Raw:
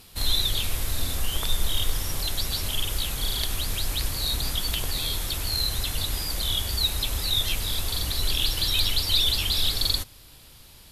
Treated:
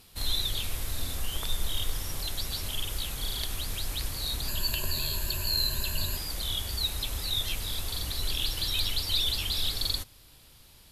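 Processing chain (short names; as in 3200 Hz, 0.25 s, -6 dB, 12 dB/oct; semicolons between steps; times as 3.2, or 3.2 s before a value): 4.48–6.17 ripple EQ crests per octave 1.4, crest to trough 14 dB; gain -5.5 dB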